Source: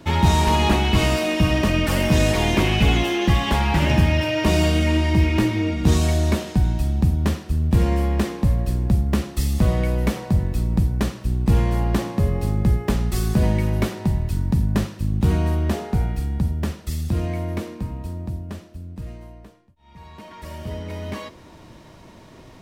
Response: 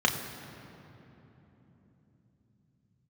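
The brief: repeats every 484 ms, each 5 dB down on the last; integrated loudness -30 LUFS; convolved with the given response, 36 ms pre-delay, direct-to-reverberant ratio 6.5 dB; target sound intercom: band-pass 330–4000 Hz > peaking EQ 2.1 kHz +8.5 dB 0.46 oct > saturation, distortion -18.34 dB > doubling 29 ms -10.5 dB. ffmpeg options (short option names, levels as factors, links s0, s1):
-filter_complex "[0:a]aecho=1:1:484|968|1452|1936|2420|2904|3388:0.562|0.315|0.176|0.0988|0.0553|0.031|0.0173,asplit=2[s0][s1];[1:a]atrim=start_sample=2205,adelay=36[s2];[s1][s2]afir=irnorm=-1:irlink=0,volume=0.106[s3];[s0][s3]amix=inputs=2:normalize=0,highpass=330,lowpass=4000,equalizer=f=2100:t=o:w=0.46:g=8.5,asoftclip=threshold=0.211,asplit=2[s4][s5];[s5]adelay=29,volume=0.299[s6];[s4][s6]amix=inputs=2:normalize=0,volume=0.447"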